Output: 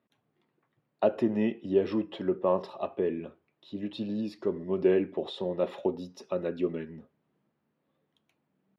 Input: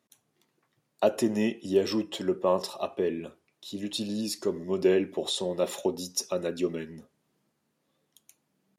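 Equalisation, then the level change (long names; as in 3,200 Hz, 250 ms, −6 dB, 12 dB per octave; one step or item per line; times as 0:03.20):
high-frequency loss of the air 390 metres
0.0 dB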